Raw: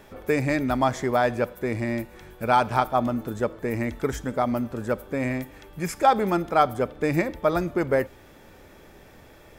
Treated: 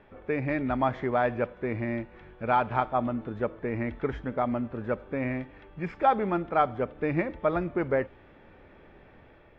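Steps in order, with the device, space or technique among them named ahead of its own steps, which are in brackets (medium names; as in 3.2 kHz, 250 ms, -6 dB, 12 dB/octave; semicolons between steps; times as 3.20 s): action camera in a waterproof case (low-pass 2.9 kHz 24 dB/octave; level rider gain up to 3 dB; trim -6.5 dB; AAC 48 kbps 22.05 kHz)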